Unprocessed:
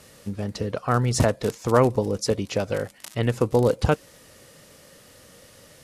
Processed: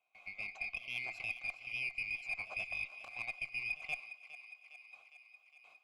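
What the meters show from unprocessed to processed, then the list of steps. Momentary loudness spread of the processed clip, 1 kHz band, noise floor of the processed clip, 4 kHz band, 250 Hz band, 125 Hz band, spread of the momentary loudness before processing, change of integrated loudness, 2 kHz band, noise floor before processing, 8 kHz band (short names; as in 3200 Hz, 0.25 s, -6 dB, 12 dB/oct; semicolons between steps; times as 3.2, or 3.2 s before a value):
17 LU, -26.0 dB, -66 dBFS, -14.0 dB, under -35 dB, -38.5 dB, 10 LU, -15.5 dB, -1.5 dB, -52 dBFS, -28.5 dB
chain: band-swap scrambler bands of 2000 Hz; vowel filter a; reverse; compressor 20:1, threshold -38 dBFS, peak gain reduction 15 dB; reverse; high shelf 4100 Hz -5 dB; added harmonics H 4 -32 dB, 6 -24 dB, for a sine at -29 dBFS; pre-echo 0.128 s -15 dB; gate with hold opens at -53 dBFS; on a send: thinning echo 0.409 s, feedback 68%, high-pass 470 Hz, level -13 dB; on the sum: gain +3 dB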